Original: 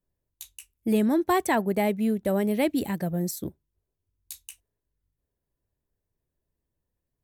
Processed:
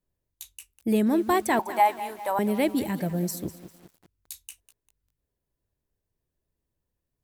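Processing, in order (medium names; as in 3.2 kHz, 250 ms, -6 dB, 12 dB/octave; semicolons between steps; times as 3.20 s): 1.59–2.39 s: resonant high-pass 910 Hz, resonance Q 11; bit-crushed delay 199 ms, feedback 55%, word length 7-bit, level -14 dB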